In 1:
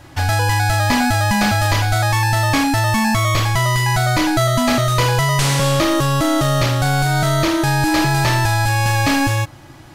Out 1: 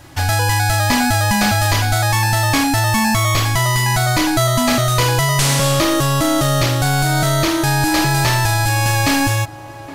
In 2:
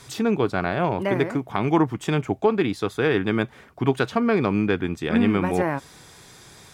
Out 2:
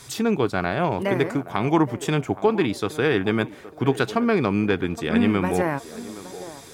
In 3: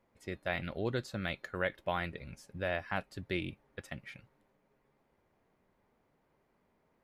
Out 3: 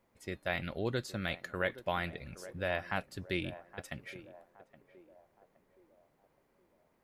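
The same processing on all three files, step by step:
high-shelf EQ 5,300 Hz +6.5 dB
feedback echo with a band-pass in the loop 819 ms, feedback 49%, band-pass 540 Hz, level −13.5 dB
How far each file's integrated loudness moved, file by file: +1.0, 0.0, 0.0 LU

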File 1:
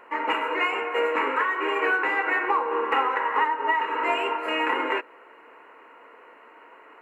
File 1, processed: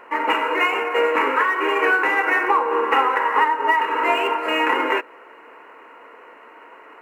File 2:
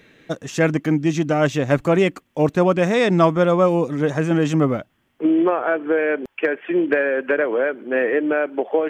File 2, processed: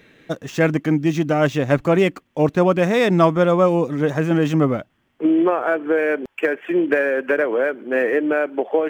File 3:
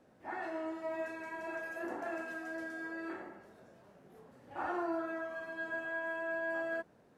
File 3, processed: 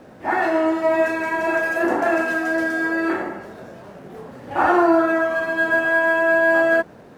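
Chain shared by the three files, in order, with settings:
running median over 5 samples
loudness normalisation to −19 LKFS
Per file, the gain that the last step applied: +5.5, +0.5, +20.5 decibels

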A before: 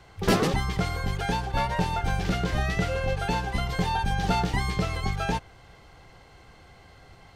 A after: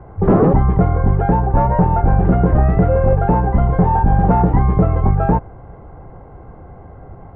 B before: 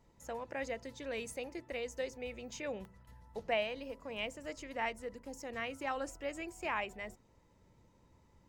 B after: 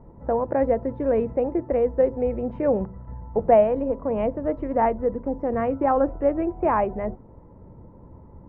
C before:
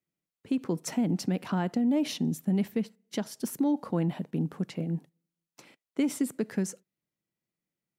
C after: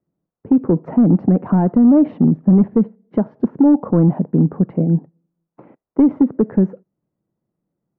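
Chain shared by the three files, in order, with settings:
gain into a clipping stage and back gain 22 dB
Bessel low-pass filter 760 Hz, order 4
normalise the peak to −6 dBFS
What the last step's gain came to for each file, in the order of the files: +16.0, +21.0, +16.0 decibels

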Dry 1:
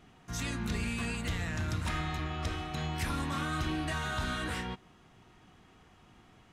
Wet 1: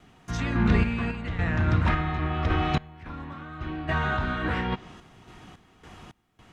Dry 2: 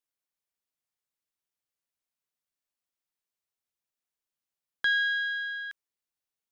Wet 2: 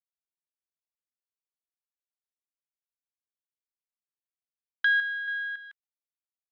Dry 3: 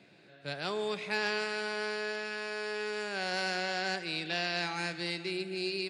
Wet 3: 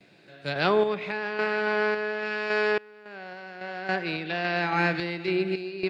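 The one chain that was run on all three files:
treble cut that deepens with the level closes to 2,100 Hz, closed at −31.5 dBFS
noise gate with hold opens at −55 dBFS
sample-and-hold tremolo 3.6 Hz, depth 95%
Opus 96 kbit/s 48,000 Hz
loudness normalisation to −27 LKFS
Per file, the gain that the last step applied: +13.5, +4.5, +13.5 decibels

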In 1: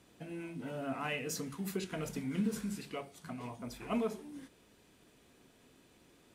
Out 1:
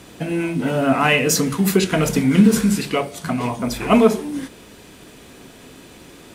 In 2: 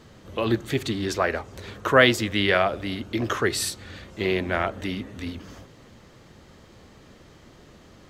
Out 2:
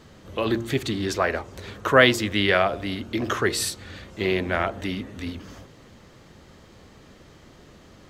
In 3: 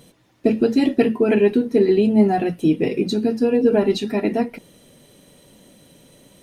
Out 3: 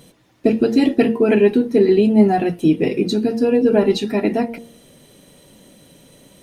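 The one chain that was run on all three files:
hum removal 115.9 Hz, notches 9
normalise the peak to −2 dBFS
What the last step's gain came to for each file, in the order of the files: +21.5, +1.0, +2.5 decibels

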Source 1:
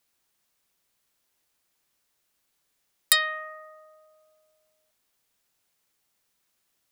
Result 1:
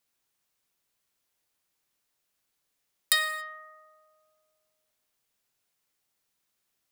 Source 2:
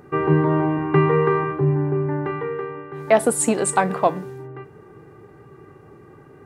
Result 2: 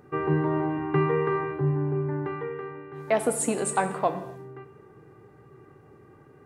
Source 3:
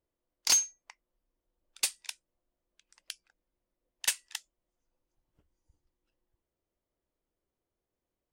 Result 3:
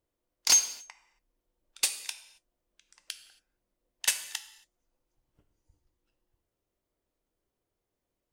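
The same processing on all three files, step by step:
reverb whose tail is shaped and stops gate 300 ms falling, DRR 8.5 dB
loudness normalisation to −27 LKFS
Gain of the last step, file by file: −5.0, −7.0, +2.0 decibels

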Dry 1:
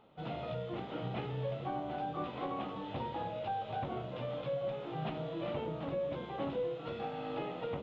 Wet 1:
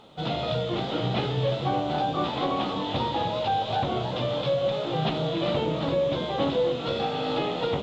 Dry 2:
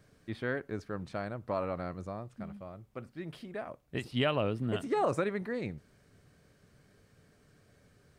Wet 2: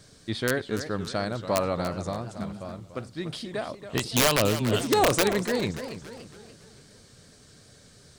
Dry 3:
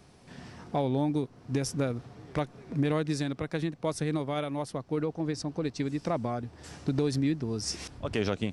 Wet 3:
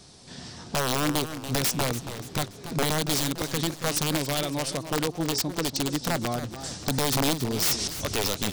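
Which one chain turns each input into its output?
flat-topped bell 5,600 Hz +11.5 dB
wrap-around overflow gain 21 dB
feedback echo with a swinging delay time 284 ms, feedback 46%, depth 204 cents, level −11 dB
loudness normalisation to −27 LKFS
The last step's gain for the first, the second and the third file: +11.0, +7.5, +3.0 decibels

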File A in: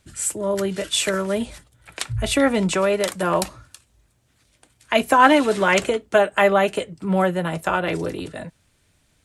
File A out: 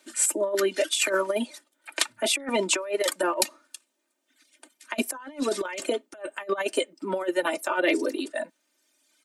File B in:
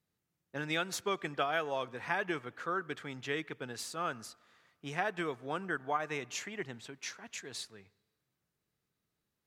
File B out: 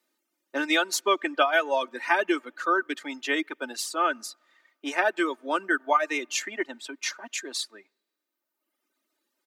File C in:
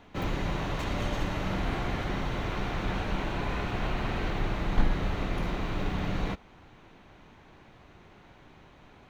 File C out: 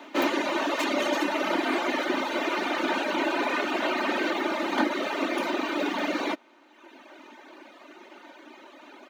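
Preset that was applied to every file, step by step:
reverb reduction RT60 1.4 s
Butterworth high-pass 260 Hz 36 dB per octave
comb filter 3.3 ms, depth 61%
compressor whose output falls as the input rises −23 dBFS, ratio −0.5
loudness normalisation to −27 LKFS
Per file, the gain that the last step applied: −2.5, +9.5, +10.0 decibels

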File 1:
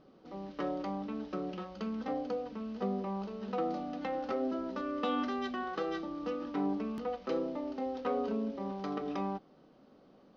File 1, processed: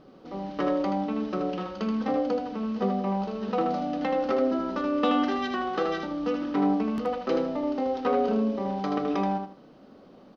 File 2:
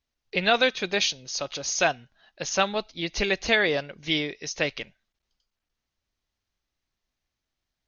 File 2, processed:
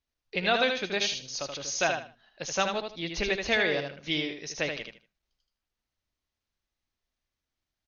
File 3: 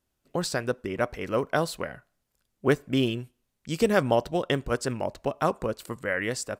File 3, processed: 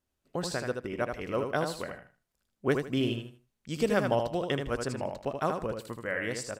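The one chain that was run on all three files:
high-shelf EQ 11,000 Hz −5 dB
on a send: repeating echo 78 ms, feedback 24%, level −5.5 dB
on the sum: normalise the peak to −12 dBFS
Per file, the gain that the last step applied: +8.0, −4.5, −5.0 decibels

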